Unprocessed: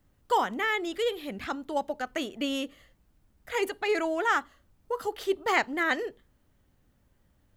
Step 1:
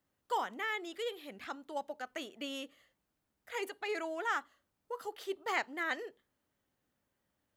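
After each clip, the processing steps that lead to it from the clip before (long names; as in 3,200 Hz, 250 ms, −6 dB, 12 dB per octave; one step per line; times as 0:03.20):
high-pass filter 390 Hz 6 dB per octave
level −8 dB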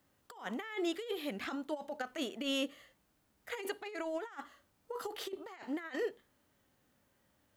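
compressor whose output falls as the input rises −42 dBFS, ratio −0.5
harmonic and percussive parts rebalanced percussive −6 dB
level +6 dB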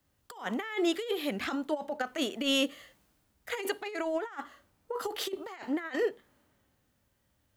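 in parallel at 0 dB: downward compressor, threshold −47 dBFS, peak gain reduction 15.5 dB
on the sum: multiband upward and downward expander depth 40%
level +4 dB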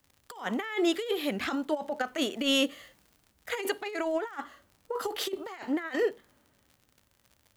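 surface crackle 73 per second −47 dBFS
level +2 dB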